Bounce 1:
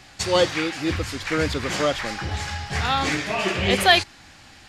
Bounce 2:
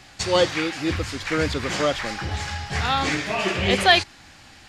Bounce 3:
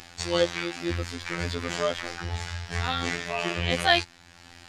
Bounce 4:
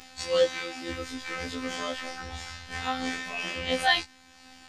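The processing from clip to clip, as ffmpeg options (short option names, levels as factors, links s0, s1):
-filter_complex "[0:a]acrossover=split=9700[s0][s1];[s1]acompressor=threshold=0.00178:ratio=4:attack=1:release=60[s2];[s0][s2]amix=inputs=2:normalize=0"
-af "afftfilt=real='hypot(re,im)*cos(PI*b)':imag='0':win_size=2048:overlap=0.75,acompressor=mode=upward:threshold=0.0178:ratio=2.5,volume=0.794"
-af "afftfilt=real='re*1.73*eq(mod(b,3),0)':imag='im*1.73*eq(mod(b,3),0)':win_size=2048:overlap=0.75"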